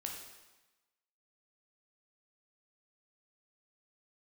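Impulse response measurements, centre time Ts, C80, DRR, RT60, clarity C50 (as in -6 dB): 45 ms, 6.0 dB, 0.0 dB, 1.1 s, 3.5 dB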